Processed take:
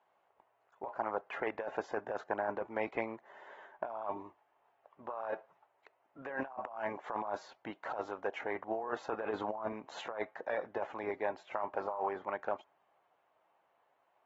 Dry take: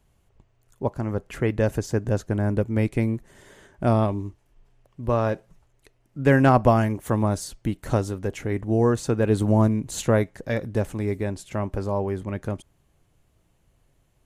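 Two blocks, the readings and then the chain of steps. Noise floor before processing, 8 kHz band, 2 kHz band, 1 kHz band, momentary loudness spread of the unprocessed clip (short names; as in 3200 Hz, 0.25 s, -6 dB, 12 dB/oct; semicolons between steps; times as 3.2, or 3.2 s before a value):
-65 dBFS, under -25 dB, -9.0 dB, -9.0 dB, 11 LU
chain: ladder band-pass 980 Hz, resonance 40%; negative-ratio compressor -44 dBFS, ratio -1; gain +6 dB; AAC 24 kbps 44100 Hz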